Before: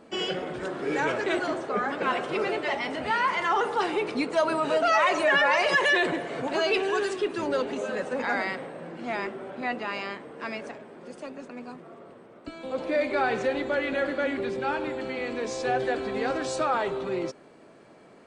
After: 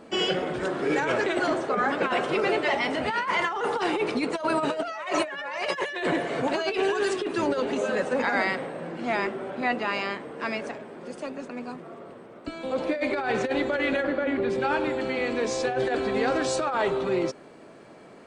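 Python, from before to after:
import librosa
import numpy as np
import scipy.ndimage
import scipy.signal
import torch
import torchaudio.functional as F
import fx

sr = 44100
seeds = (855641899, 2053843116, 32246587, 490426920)

y = fx.over_compress(x, sr, threshold_db=-27.0, ratio=-0.5)
y = fx.lowpass(y, sr, hz=1900.0, slope=6, at=(14.03, 14.49), fade=0.02)
y = y * 10.0 ** (2.5 / 20.0)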